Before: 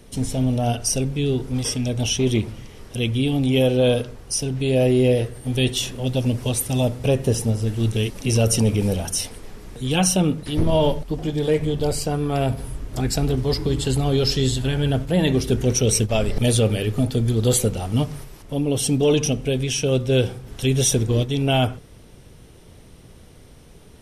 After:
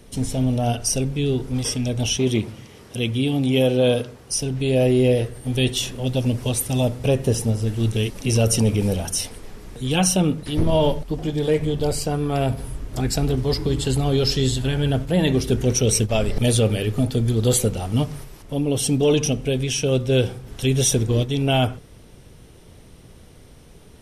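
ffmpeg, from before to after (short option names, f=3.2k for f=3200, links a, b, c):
-filter_complex "[0:a]asettb=1/sr,asplit=3[a][b][c];[a]atrim=end=2.174[d];[b]atrim=start=2.17:end=4.32,asetpts=PTS-STARTPTS,afade=t=in:d=0.004:c=qsin,afade=t=out:st=2.146:d=0.004:c=qsin,highpass=100[e];[c]atrim=start=4.316[f];[d][e]acrossfade=d=0.004:c1=hsin:c2=qsin[g];[g][f]acrossfade=d=0.004:c1=qsin:c2=hsin"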